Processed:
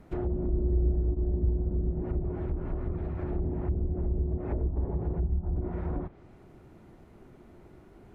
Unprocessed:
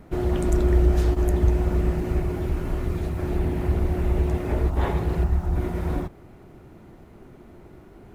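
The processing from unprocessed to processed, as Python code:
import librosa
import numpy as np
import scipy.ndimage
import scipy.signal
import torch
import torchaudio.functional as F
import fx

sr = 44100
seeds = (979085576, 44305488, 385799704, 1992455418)

y = fx.env_lowpass_down(x, sr, base_hz=370.0, full_db=-18.0)
y = 10.0 ** (-9.5 / 20.0) * np.tanh(y / 10.0 ** (-9.5 / 20.0))
y = F.gain(torch.from_numpy(y), -6.0).numpy()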